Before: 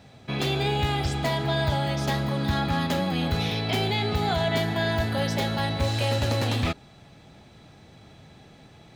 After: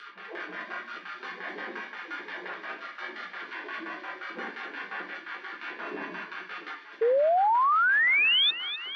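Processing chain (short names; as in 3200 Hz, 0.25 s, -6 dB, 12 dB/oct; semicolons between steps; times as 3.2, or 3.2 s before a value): moving spectral ripple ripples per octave 1.9, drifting +0.91 Hz, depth 17 dB; in parallel at +1.5 dB: compressor, threshold -33 dBFS, peak gain reduction 17.5 dB; on the sum: sample-and-hold 34×; LPF 4900 Hz 24 dB/oct; spectral gate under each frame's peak -25 dB weak; LFO low-pass square 5.7 Hz 340–1600 Hz; upward compressor, threshold -31 dBFS; limiter -26 dBFS, peak gain reduction 9 dB; steep high-pass 180 Hz 72 dB/oct; shoebox room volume 44 m³, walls mixed, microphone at 0.92 m; painted sound rise, 7.01–8.51, 440–3700 Hz -19 dBFS; on a send: thin delay 0.254 s, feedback 73%, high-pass 3700 Hz, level -7.5 dB; on the sum: gain -3.5 dB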